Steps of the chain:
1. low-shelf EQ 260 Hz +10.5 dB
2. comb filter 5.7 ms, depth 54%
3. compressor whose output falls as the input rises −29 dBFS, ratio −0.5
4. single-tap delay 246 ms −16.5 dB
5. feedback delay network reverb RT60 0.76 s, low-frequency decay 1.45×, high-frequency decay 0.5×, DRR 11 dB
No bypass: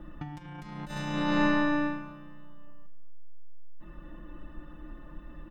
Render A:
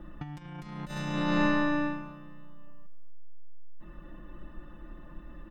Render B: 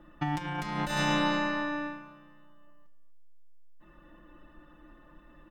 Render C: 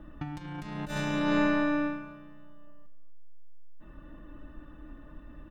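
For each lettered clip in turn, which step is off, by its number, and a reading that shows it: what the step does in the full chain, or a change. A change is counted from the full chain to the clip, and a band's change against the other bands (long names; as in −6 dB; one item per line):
5, echo-to-direct ratio −10.0 dB to −16.5 dB
1, 250 Hz band −5.0 dB
2, 500 Hz band +2.5 dB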